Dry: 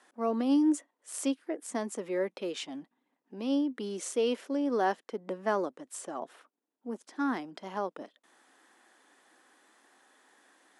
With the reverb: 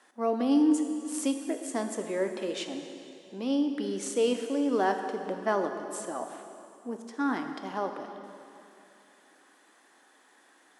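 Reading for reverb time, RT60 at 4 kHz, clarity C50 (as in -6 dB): 2.8 s, 2.6 s, 6.5 dB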